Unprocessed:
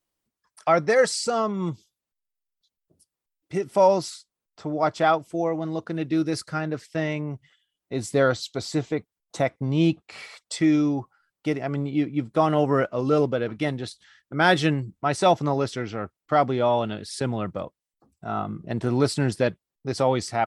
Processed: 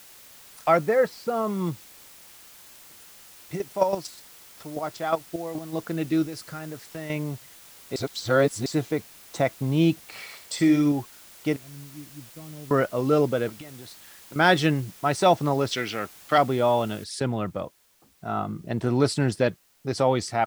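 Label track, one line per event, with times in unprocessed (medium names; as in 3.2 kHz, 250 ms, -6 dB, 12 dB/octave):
0.770000	1.470000	tape spacing loss at 10 kHz 34 dB
3.550000	5.720000	square tremolo 10 Hz -> 4 Hz, depth 65%, duty 15%
6.250000	7.100000	compression 2.5:1, threshold -36 dBFS
7.960000	8.660000	reverse
10.200000	10.920000	flutter echo walls apart 10.5 m, dies away in 0.41 s
11.560000	12.710000	amplifier tone stack bass-middle-treble 10-0-1
13.490000	14.360000	compression 16:1, threshold -38 dBFS
15.710000	16.380000	frequency weighting D
17.040000	17.040000	noise floor step -49 dB -63 dB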